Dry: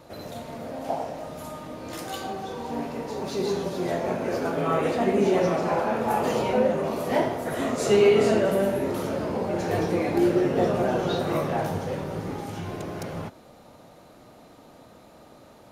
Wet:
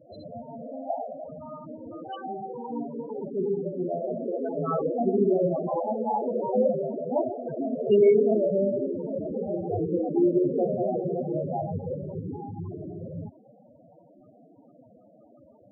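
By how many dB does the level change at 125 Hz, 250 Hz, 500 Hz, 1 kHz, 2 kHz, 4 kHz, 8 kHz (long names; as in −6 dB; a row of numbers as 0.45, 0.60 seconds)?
−3.5 dB, −1.5 dB, −1.0 dB, −5.0 dB, below −20 dB, below −15 dB, below −40 dB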